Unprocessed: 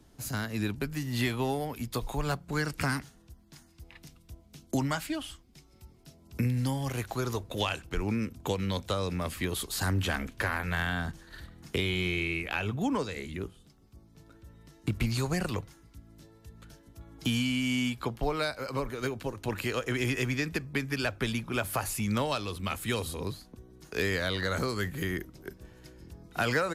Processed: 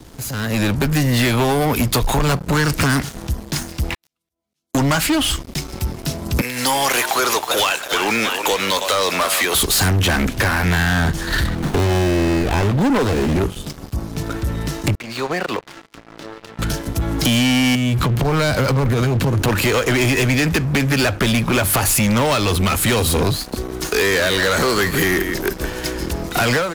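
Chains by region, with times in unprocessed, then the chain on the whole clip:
3.94–4.75 HPF 810 Hz 6 dB/oct + auto swell 0.779 s
6.41–9.55 HPF 720 Hz + frequency-shifting echo 0.318 s, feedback 50%, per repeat +83 Hz, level -13.5 dB
11.55–13.38 HPF 94 Hz 6 dB/oct + running maximum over 17 samples
14.95–16.59 HPF 390 Hz + compressor 2.5:1, threshold -55 dBFS + air absorption 200 m
17.75–19.42 half-wave gain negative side -3 dB + bell 130 Hz +13.5 dB 1.6 oct + compressor 12:1, threshold -34 dBFS
23.36–26.41 bell 110 Hz -11 dB 2.1 oct + echo 0.163 s -15.5 dB
whole clip: compressor 3:1, threshold -42 dBFS; sample leveller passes 5; AGC gain up to 12.5 dB

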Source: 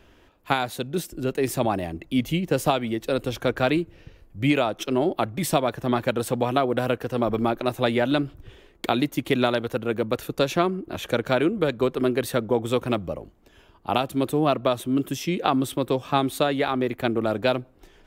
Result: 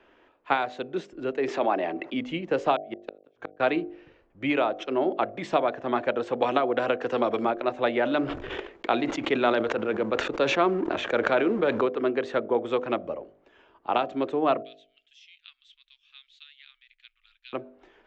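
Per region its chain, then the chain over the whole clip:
1.48–2.14 BPF 250–5500 Hz + fast leveller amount 50%
2.76–3.6 notches 60/120/180/240/300/360/420/480 Hz + flipped gate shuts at -17 dBFS, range -41 dB
6.42–7.45 HPF 48 Hz + high shelf 4900 Hz +11.5 dB + three-band squash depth 100%
8.03–11.81 G.711 law mismatch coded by A + gate -55 dBFS, range -21 dB + sustainer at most 21 dB/s
14.62–17.53 inverse Chebyshev band-stop 120–660 Hz, stop band 80 dB + tape spacing loss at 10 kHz 20 dB
whole clip: steep low-pass 7500 Hz 72 dB/oct; three-band isolator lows -18 dB, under 270 Hz, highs -18 dB, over 3000 Hz; de-hum 50.14 Hz, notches 15

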